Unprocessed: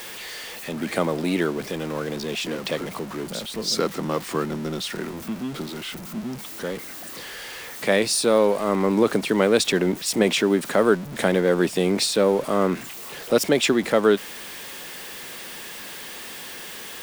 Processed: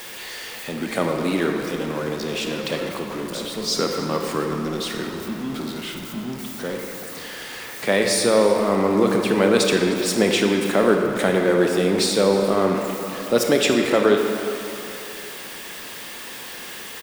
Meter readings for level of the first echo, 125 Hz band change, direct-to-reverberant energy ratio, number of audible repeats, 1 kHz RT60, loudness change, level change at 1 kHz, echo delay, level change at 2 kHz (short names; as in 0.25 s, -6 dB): -18.5 dB, +1.5 dB, 2.0 dB, 1, 3.0 s, +1.5 dB, +2.5 dB, 0.306 s, +2.0 dB